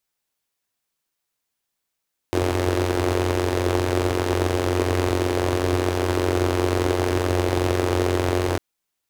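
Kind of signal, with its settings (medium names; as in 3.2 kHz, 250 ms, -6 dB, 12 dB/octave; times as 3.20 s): four-cylinder engine model, steady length 6.25 s, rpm 2700, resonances 96/350 Hz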